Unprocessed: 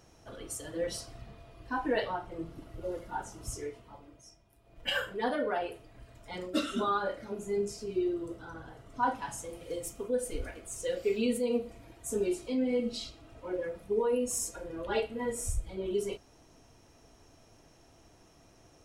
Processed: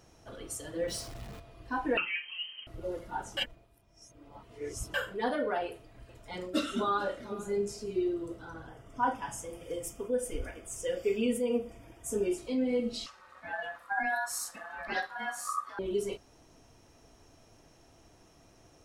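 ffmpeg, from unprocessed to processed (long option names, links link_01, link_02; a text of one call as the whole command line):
ffmpeg -i in.wav -filter_complex "[0:a]asettb=1/sr,asplit=3[link_01][link_02][link_03];[link_01]atrim=end=0.884[link_04];[link_02]atrim=start=0.88:end=1.4,asetpts=PTS-STARTPTS,afade=type=in:duration=0.004:curve=qsin,afade=type=out:start_time=0.516:duration=0.004:curve=qsin,aeval=exprs='val(0)+0.5*0.00596*sgn(val(0))':channel_layout=same[link_05];[link_03]atrim=start=1.396[link_06];[link_04][link_05]acrossfade=duration=0.004:curve1=hsin:curve2=qsin[link_07];[link_07][link_06]acrossfade=duration=0.004:curve1=qsin:curve2=hsin,asettb=1/sr,asplit=3[link_08][link_09][link_10];[link_08]atrim=end=1.974[link_11];[link_09]atrim=start=1.97:end=2.67,asetpts=PTS-STARTPTS,afade=type=in:duration=0.004:curve=qsin,afade=type=out:start_time=0.696:duration=0.004:curve=qsin,lowpass=frequency=2700:width_type=q:width=0.5098,lowpass=frequency=2700:width_type=q:width=0.6013,lowpass=frequency=2700:width_type=q:width=0.9,lowpass=frequency=2700:width_type=q:width=2.563,afreqshift=-3200[link_12];[link_10]atrim=start=2.666[link_13];[link_11][link_12]acrossfade=duration=0.004:curve1=hsin:curve2=qsin[link_14];[link_14][link_13]acrossfade=duration=0.004:curve1=qsin:curve2=hsin,asettb=1/sr,asplit=3[link_15][link_16][link_17];[link_15]atrim=end=5.654[link_18];[link_16]atrim=start=5.65:end=8.01,asetpts=PTS-STARTPTS,afade=type=in:duration=0.004:curve=qsin,afade=type=out:start_time=2.356:duration=0.004:curve=qsin,aecho=1:1:441:0.126,atrim=end_sample=104076[link_19];[link_17]atrim=start=8.006[link_20];[link_18][link_19]acrossfade=duration=0.004:curve1=hsin:curve2=qsin[link_21];[link_21][link_20]acrossfade=duration=0.004:curve1=qsin:curve2=hsin,asettb=1/sr,asplit=3[link_22][link_23][link_24];[link_22]atrim=end=8.674[link_25];[link_23]atrim=start=8.67:end=12.38,asetpts=PTS-STARTPTS,afade=type=in:duration=0.004:curve=qsin,afade=type=out:start_time=3.706:duration=0.004:curve=qsin,asuperstop=centerf=4100:order=12:qfactor=4.5[link_26];[link_24]atrim=start=12.376[link_27];[link_25][link_26]acrossfade=duration=0.004:curve1=hsin:curve2=qsin[link_28];[link_28][link_27]acrossfade=duration=0.004:curve1=qsin:curve2=hsin,asettb=1/sr,asplit=3[link_29][link_30][link_31];[link_29]atrim=end=13.064[link_32];[link_30]atrim=start=13.06:end=15.79,asetpts=PTS-STARTPTS,afade=type=in:duration=0.004:curve=qsin,afade=type=out:start_time=2.726:duration=0.004:curve=qsin,aeval=exprs='val(0)*sin(2*PI*1200*n/s)':channel_layout=same[link_33];[link_31]atrim=start=15.786[link_34];[link_32][link_33]acrossfade=duration=0.004:curve1=hsin:curve2=qsin[link_35];[link_35][link_34]acrossfade=duration=0.004:curve1=qsin:curve2=hsin,asplit=3[link_36][link_37][link_38];[link_36]atrim=end=3.372[link_39];[link_37]atrim=start=3.368:end=4.942,asetpts=PTS-STARTPTS,areverse[link_40];[link_38]atrim=start=4.938[link_41];[link_39][link_40]acrossfade=duration=0.004:curve1=hsin:curve2=hsin[link_42];[link_42][link_41]acrossfade=duration=0.004:curve1=hsin:curve2=hsin" out.wav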